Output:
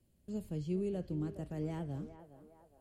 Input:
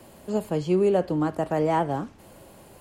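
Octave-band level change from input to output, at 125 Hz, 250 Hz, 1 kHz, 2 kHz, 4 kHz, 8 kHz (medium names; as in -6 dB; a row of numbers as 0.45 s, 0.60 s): -8.0 dB, -12.0 dB, -26.0 dB, -20.5 dB, -16.5 dB, no reading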